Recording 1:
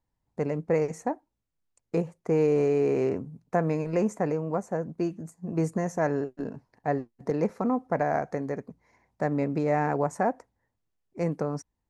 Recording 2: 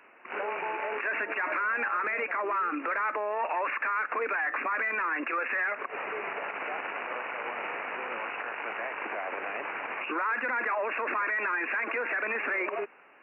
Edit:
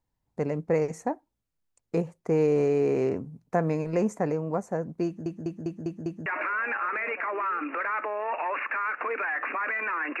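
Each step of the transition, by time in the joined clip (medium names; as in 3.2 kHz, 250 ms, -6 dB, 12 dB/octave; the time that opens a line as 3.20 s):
recording 1
5.06 s: stutter in place 0.20 s, 6 plays
6.26 s: go over to recording 2 from 1.37 s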